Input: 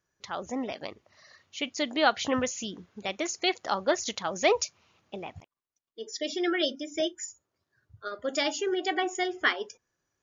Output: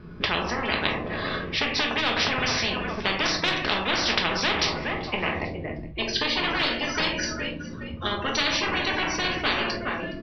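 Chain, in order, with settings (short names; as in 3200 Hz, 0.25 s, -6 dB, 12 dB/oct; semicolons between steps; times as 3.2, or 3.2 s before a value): resonant low shelf 480 Hz +8.5 dB, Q 1.5; notch 1400 Hz, Q 8.2; in parallel at +2 dB: compressor, threshold -27 dBFS, peak gain reduction 13 dB; on the sum: formant shift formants -3 st; soft clip -10 dBFS, distortion -21 dB; air absorption 450 m; on a send: frequency-shifting echo 0.416 s, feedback 31%, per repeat -37 Hz, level -22 dB; on the sum: shoebox room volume 240 m³, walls furnished, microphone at 1.4 m; spectral compressor 10:1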